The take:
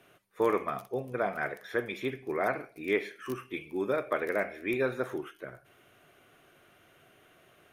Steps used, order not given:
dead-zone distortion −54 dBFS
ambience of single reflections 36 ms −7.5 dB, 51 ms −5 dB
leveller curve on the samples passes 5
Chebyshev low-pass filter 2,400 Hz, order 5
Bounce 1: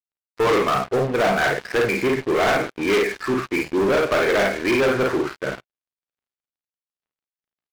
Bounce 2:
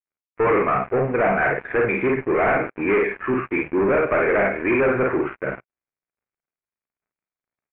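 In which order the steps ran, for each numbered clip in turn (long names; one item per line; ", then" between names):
Chebyshev low-pass filter, then dead-zone distortion, then ambience of single reflections, then leveller curve on the samples
dead-zone distortion, then ambience of single reflections, then leveller curve on the samples, then Chebyshev low-pass filter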